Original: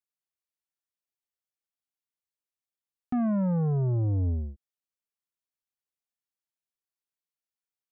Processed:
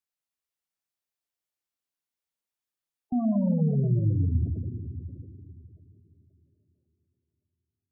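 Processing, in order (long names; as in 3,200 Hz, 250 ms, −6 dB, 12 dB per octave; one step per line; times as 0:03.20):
bucket-brigade delay 407 ms, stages 4,096, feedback 48%, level −17.5 dB
four-comb reverb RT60 3.2 s, combs from 25 ms, DRR 2 dB
gate on every frequency bin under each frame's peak −20 dB strong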